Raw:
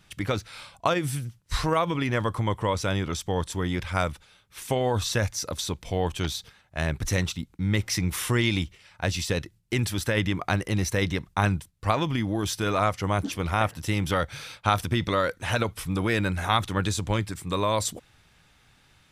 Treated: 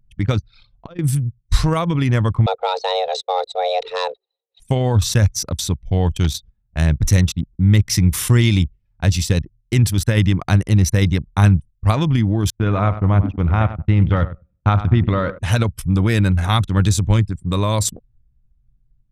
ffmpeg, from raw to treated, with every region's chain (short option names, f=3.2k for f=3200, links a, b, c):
-filter_complex "[0:a]asettb=1/sr,asplit=3[a][b][c];[a]atrim=end=0.434[d];[b]atrim=start=0.43:end=0.99,asetpts=PTS-STARTPTS,afade=t=in:d=0.004:c=qsin,afade=t=out:st=0.556:d=0.004:c=qsin,acompressor=threshold=-36dB:ratio=6:attack=3.2:release=140:knee=1:detection=peak,lowpass=f=4.9k:t=q:w=1.9[e];[c]atrim=start=0.986[f];[d][e]acrossfade=d=0.004:c1=hsin:c2=qsin[g];[g][f]acrossfade=d=0.004:c1=qsin:c2=hsin,asettb=1/sr,asplit=3[h][i][j];[h]atrim=end=2.464[k];[i]atrim=start=2.46:end=4.6,asetpts=PTS-STARTPTS,afade=t=in:d=0.004:c=qsin,afade=t=out:st=2.136:d=0.004:c=qsin,asoftclip=type=hard:threshold=-18dB,afreqshift=360,highpass=f=500:w=0.5412,highpass=f=500:w=1.3066,equalizer=f=510:t=q:w=4:g=7,equalizer=f=730:t=q:w=4:g=10,equalizer=f=1.6k:t=q:w=4:g=-9,equalizer=f=3.9k:t=q:w=4:g=8,equalizer=f=6.2k:t=q:w=4:g=-6,lowpass=f=6.5k:w=0.5412,lowpass=f=6.5k:w=1.3066[l];[j]atrim=start=4.596[m];[k][l]acrossfade=d=0.004:c1=hsin:c2=qsin[n];[n][m]acrossfade=d=0.004:c1=qsin:c2=hsin,asettb=1/sr,asplit=3[o][p][q];[o]atrim=end=12.504[r];[p]atrim=start=12.5:end=15.39,asetpts=PTS-STARTPTS,afade=t=in:d=0.004:c=qsin,afade=t=out:st=2.886:d=0.004:c=qsin,lowpass=2.3k,agate=range=-15dB:threshold=-38dB:ratio=16:release=100:detection=peak,aecho=1:1:98|196|294|392:0.251|0.098|0.0382|0.0149,atrim=end_sample=127449[s];[q]atrim=start=15.386[t];[r][s]acrossfade=d=0.004:c1=hsin:c2=qsin[u];[u][t]acrossfade=d=0.004:c1=qsin:c2=hsin,anlmdn=10,bass=f=250:g=12,treble=f=4k:g=7,volume=2dB"